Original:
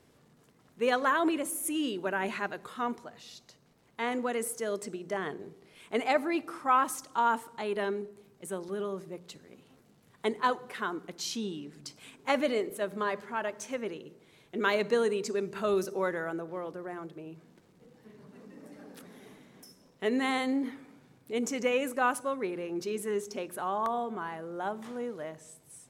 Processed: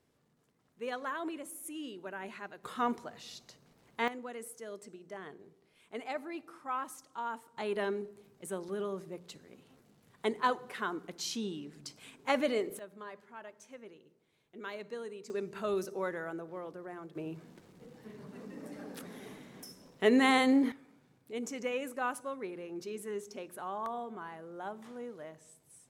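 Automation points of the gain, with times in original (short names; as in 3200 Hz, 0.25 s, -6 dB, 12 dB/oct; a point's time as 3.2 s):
-11 dB
from 2.64 s +1 dB
from 4.08 s -11.5 dB
from 7.57 s -2 dB
from 12.79 s -15 dB
from 15.3 s -5 dB
from 17.15 s +4 dB
from 20.72 s -7 dB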